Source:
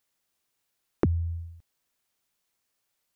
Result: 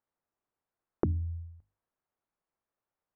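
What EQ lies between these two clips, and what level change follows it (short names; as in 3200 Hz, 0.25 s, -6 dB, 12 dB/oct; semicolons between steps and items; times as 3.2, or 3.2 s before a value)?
Chebyshev low-pass 1100 Hz, order 2; notches 50/100/150/200/250/300 Hz; -3.0 dB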